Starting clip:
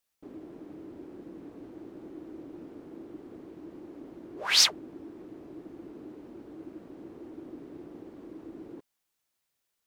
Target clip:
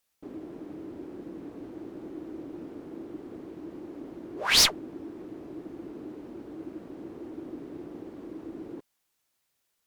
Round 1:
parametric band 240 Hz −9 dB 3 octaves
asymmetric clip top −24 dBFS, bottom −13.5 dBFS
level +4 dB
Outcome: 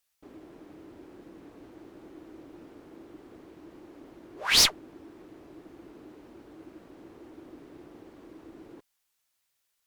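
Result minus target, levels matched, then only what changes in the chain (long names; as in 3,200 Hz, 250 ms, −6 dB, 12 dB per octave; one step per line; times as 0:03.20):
250 Hz band −18.5 dB
remove: parametric band 240 Hz −9 dB 3 octaves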